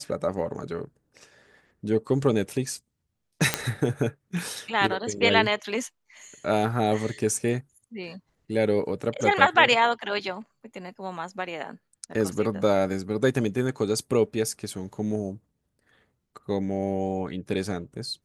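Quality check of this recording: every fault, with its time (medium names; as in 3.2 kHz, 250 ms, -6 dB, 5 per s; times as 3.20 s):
3.54 s: pop -5 dBFS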